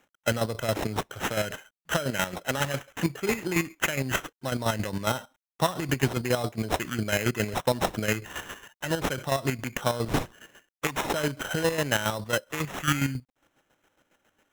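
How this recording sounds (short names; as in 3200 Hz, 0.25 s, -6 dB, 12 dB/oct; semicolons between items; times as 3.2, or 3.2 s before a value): a quantiser's noise floor 12-bit, dither none; chopped level 7.3 Hz, depth 60%, duty 35%; aliases and images of a low sample rate 4600 Hz, jitter 0%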